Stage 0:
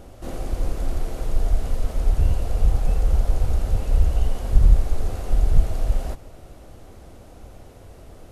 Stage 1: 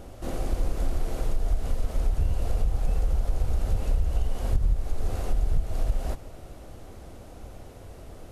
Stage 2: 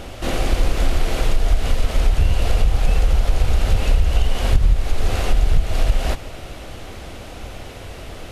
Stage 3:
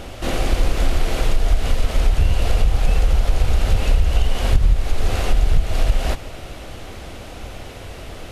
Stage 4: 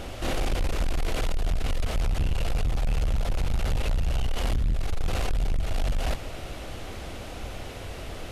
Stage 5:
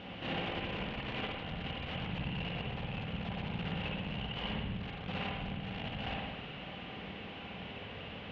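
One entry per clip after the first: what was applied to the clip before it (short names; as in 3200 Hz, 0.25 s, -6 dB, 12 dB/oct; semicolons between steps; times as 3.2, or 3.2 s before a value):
compressor 6:1, threshold -19 dBFS, peak gain reduction 12.5 dB
bell 2800 Hz +11.5 dB 2.1 oct; gain +8.5 dB
nothing audible
soft clip -18 dBFS, distortion -9 dB; gain -2.5 dB
speaker cabinet 140–3400 Hz, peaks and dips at 180 Hz +6 dB, 370 Hz -8 dB, 620 Hz -7 dB, 1300 Hz -5 dB, 2900 Hz +6 dB; spring tank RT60 1.1 s, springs 52/57 ms, chirp 45 ms, DRR -2 dB; gain -7 dB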